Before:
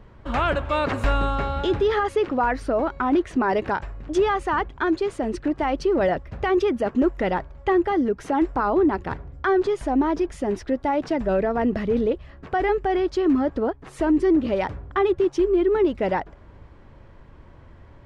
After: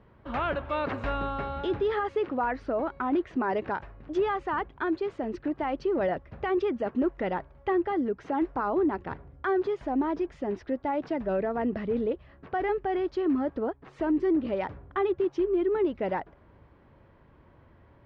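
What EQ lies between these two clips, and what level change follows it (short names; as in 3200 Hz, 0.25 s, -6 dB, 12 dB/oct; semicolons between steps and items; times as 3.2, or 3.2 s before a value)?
HPF 110 Hz 6 dB/oct; air absorption 190 m; -5.5 dB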